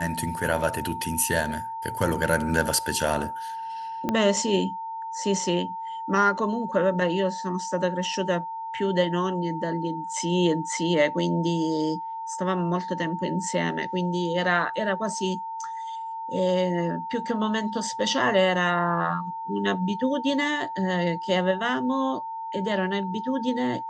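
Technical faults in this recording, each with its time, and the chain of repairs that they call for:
tone 900 Hz -31 dBFS
4.09 pop -12 dBFS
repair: de-click; notch 900 Hz, Q 30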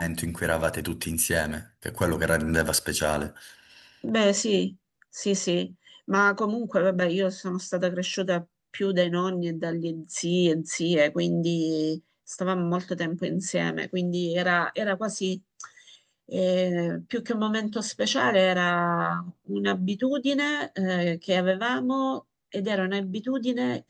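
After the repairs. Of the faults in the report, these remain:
4.09 pop

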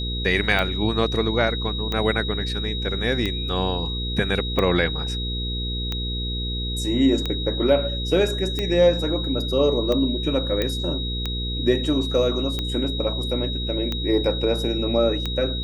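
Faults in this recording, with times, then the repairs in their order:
hum 60 Hz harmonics 8 -28 dBFS
tick 45 rpm -12 dBFS
tone 3800 Hz -29 dBFS
10.62 pop -10 dBFS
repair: de-click; notch 3800 Hz, Q 30; de-hum 60 Hz, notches 8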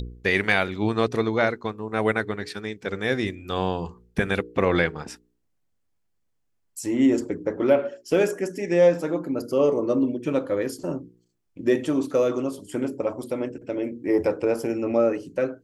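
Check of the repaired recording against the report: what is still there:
none

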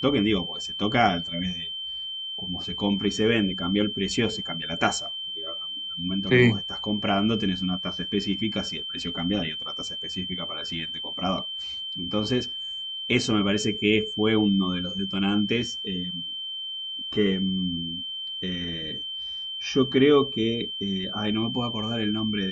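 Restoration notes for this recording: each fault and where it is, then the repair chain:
tone 3100 Hz -31 dBFS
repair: notch 3100 Hz, Q 30

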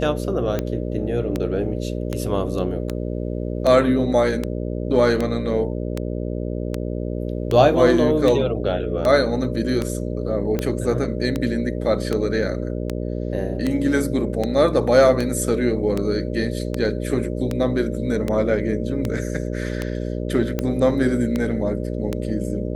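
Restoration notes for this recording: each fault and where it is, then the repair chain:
buzz 60 Hz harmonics 10 -26 dBFS
tick 78 rpm -10 dBFS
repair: de-click; de-hum 60 Hz, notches 10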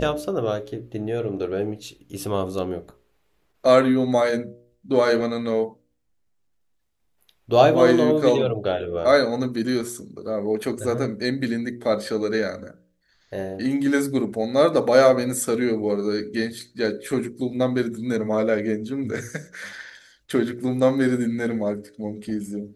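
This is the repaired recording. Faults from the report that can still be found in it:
none

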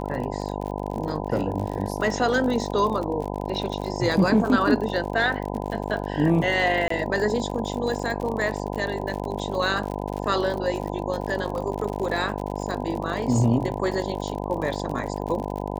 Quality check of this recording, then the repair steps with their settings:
buzz 50 Hz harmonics 20 -30 dBFS
crackle 55/s -30 dBFS
6.88–6.9 gap 24 ms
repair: de-click; de-hum 50 Hz, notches 20; interpolate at 6.88, 24 ms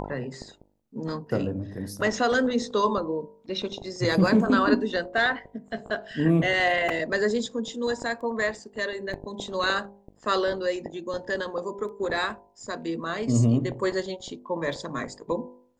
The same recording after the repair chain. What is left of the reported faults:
none

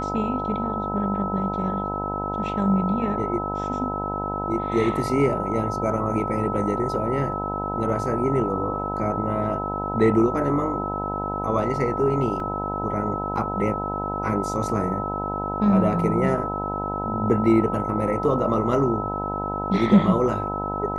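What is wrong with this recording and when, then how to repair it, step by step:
buzz 50 Hz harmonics 20 -30 dBFS
tone 1300 Hz -28 dBFS
12.4 gap 2.1 ms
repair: de-hum 50 Hz, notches 20; notch 1300 Hz, Q 30; interpolate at 12.4, 2.1 ms

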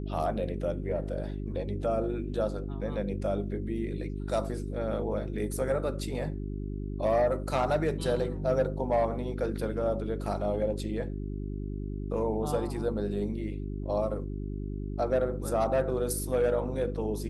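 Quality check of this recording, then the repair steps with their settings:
hum 50 Hz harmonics 8 -35 dBFS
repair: de-hum 50 Hz, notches 8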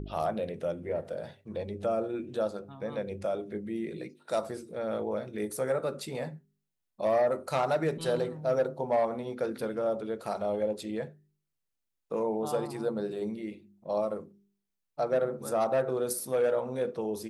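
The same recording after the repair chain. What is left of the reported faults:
none

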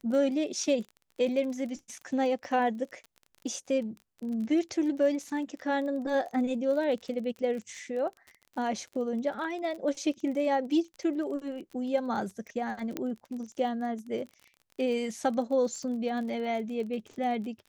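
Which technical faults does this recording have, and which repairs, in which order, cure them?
crackle 31/s -38 dBFS
12.97 pop -18 dBFS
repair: de-click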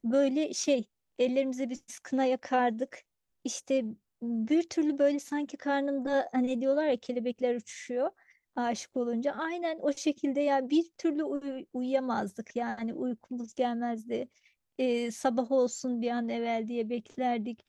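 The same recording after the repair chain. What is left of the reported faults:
none

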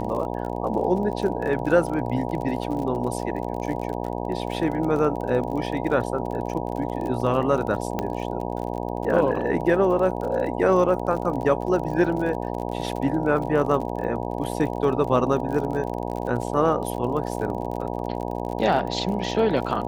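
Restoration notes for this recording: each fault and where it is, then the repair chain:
buzz 60 Hz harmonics 16 -29 dBFS
crackle 41/s -31 dBFS
7.99 pop -12 dBFS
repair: de-click; de-hum 60 Hz, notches 16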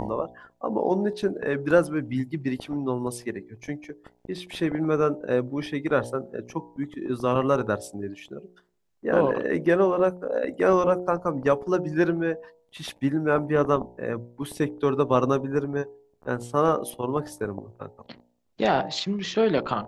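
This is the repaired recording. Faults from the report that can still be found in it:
none

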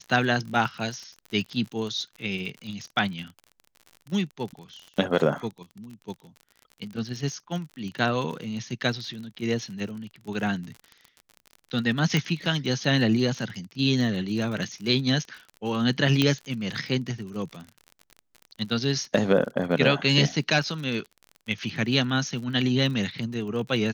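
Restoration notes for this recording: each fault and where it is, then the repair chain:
crackle 44/s -34 dBFS
12.17 pop -10 dBFS
16.22 pop -8 dBFS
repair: de-click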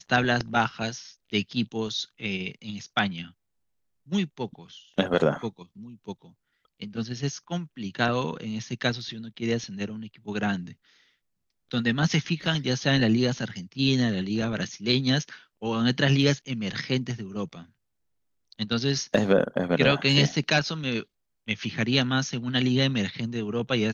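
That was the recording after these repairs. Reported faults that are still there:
12.17 pop
16.22 pop

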